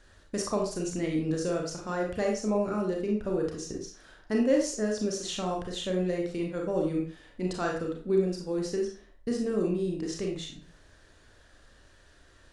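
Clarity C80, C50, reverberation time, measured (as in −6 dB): 9.5 dB, 4.5 dB, 0.45 s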